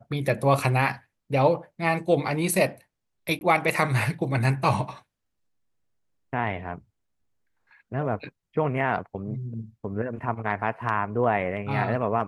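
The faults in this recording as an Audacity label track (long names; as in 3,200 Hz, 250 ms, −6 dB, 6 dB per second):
3.390000	3.410000	drop-out 21 ms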